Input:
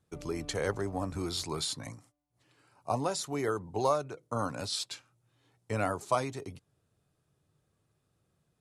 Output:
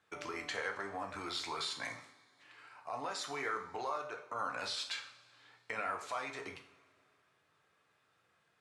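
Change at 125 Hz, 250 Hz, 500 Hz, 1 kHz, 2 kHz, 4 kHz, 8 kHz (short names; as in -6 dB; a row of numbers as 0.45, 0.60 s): -20.0, -13.0, -10.5, -4.5, +2.5, -3.0, -9.0 dB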